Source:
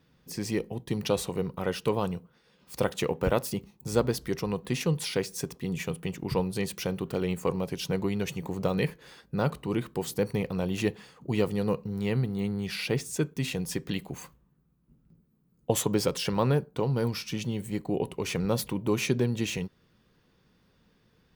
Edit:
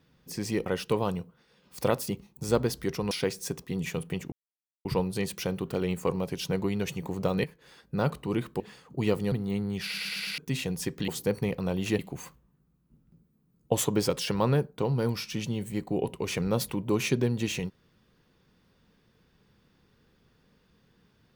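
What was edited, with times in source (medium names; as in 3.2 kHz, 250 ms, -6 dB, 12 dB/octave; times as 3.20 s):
0.66–1.62 s: delete
2.86–3.34 s: delete
4.55–5.04 s: delete
6.25 s: insert silence 0.53 s
8.84–9.35 s: fade in linear, from -12.5 dB
10.00–10.91 s: move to 13.97 s
11.63–12.21 s: delete
12.72 s: stutter in place 0.11 s, 5 plays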